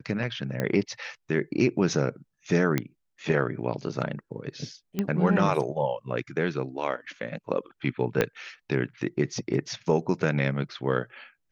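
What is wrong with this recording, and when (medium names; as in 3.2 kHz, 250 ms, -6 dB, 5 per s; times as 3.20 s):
0.60 s: pop -14 dBFS
2.78 s: pop -11 dBFS
4.99 s: pop -14 dBFS
8.21 s: pop -9 dBFS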